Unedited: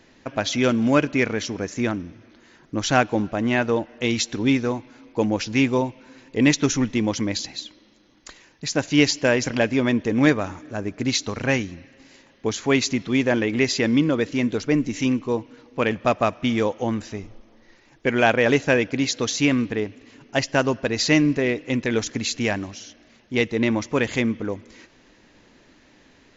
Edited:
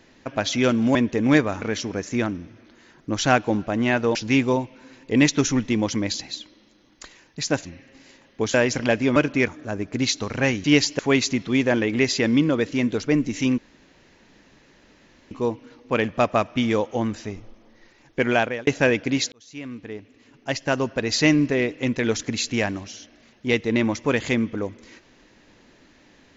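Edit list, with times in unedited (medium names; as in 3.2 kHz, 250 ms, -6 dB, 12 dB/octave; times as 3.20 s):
0.95–1.27 s: swap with 9.87–10.54 s
3.80–5.40 s: delete
8.90–9.25 s: swap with 11.70–12.59 s
15.18 s: insert room tone 1.73 s
18.15–18.54 s: fade out
19.19–21.08 s: fade in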